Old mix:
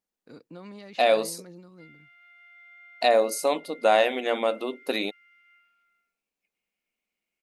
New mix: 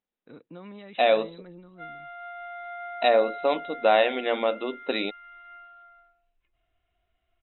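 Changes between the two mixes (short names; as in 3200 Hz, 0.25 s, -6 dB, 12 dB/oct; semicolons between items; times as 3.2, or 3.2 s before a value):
background: remove ladder band-pass 2500 Hz, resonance 75%; master: add brick-wall FIR low-pass 4000 Hz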